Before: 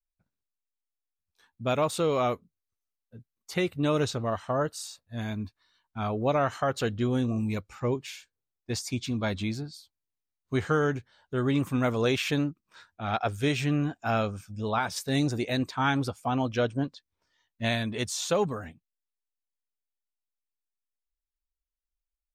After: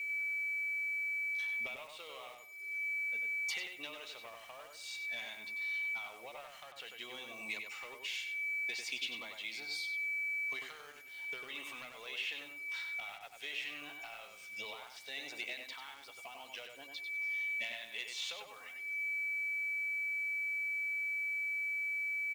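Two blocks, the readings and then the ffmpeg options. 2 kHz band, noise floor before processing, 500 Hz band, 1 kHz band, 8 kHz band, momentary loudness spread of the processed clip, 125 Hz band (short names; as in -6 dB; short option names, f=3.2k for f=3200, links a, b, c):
+3.0 dB, under -85 dBFS, -24.5 dB, -20.0 dB, -11.5 dB, 13 LU, under -40 dB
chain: -filter_complex "[0:a]bandreject=f=2.4k:w=5.4,acrossover=split=3400[a][b];[b]acompressor=threshold=-46dB:ratio=4:attack=1:release=60[c];[a][c]amix=inputs=2:normalize=0,highpass=740,equalizer=f=1.3k:w=0.36:g=11,aeval=exprs='val(0)+0.00355*sin(2*PI*2300*n/s)':c=same,acompressor=threshold=-46dB:ratio=16,asoftclip=type=tanh:threshold=-39.5dB,highshelf=f=1.9k:t=q:w=3:g=8,acrusher=bits=9:mix=0:aa=0.000001,asplit=2[d][e];[e]adelay=96,lowpass=f=3.2k:p=1,volume=-4dB,asplit=2[f][g];[g]adelay=96,lowpass=f=3.2k:p=1,volume=0.24,asplit=2[h][i];[i]adelay=96,lowpass=f=3.2k:p=1,volume=0.24[j];[f][h][j]amix=inputs=3:normalize=0[k];[d][k]amix=inputs=2:normalize=0"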